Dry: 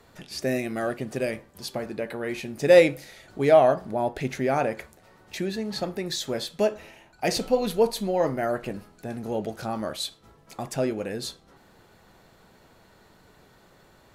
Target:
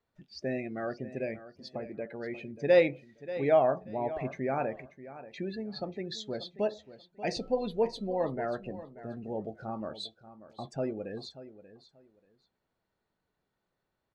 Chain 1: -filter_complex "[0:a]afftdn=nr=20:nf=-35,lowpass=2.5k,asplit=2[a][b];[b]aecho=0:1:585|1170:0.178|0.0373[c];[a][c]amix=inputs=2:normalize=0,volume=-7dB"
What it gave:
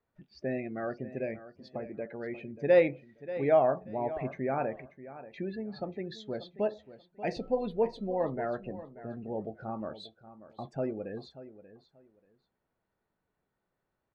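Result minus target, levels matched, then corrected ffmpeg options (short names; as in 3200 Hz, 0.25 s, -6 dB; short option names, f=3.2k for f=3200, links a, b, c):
4000 Hz band -8.0 dB
-filter_complex "[0:a]afftdn=nr=20:nf=-35,lowpass=5.4k,asplit=2[a][b];[b]aecho=0:1:585|1170:0.178|0.0373[c];[a][c]amix=inputs=2:normalize=0,volume=-7dB"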